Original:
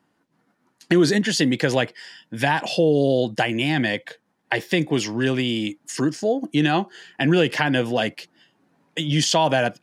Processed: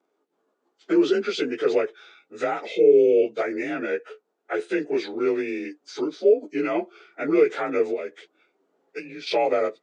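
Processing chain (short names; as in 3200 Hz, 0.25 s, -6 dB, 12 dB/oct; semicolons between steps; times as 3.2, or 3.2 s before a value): inharmonic rescaling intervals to 89%; 2.53–3.17 bell 620 Hz -8 dB 0.33 oct; 7.93–9.27 compressor 12:1, threshold -27 dBFS, peak gain reduction 11 dB; resonant high-pass 410 Hz, resonance Q 4.9; gain -6 dB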